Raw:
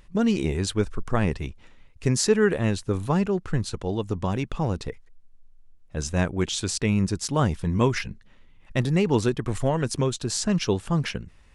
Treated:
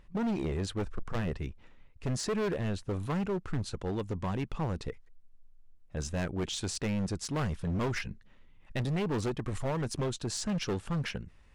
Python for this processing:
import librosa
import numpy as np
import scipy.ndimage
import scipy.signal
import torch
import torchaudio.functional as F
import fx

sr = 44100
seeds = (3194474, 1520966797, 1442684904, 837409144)

y = fx.high_shelf(x, sr, hz=4000.0, db=fx.steps((0.0, -10.5), (2.99, -5.0)))
y = np.clip(y, -10.0 ** (-23.5 / 20.0), 10.0 ** (-23.5 / 20.0))
y = y * 10.0 ** (-4.5 / 20.0)